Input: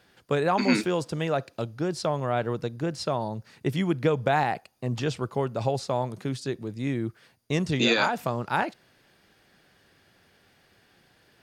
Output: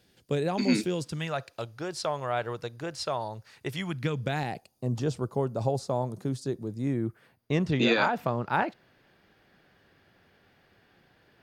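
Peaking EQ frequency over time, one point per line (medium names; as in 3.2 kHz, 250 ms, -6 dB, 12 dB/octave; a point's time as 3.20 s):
peaking EQ -12.5 dB 1.8 oct
0.87 s 1.2 kHz
1.51 s 210 Hz
3.72 s 210 Hz
4.09 s 620 Hz
4.93 s 2.4 kHz
6.74 s 2.4 kHz
7.53 s 8.9 kHz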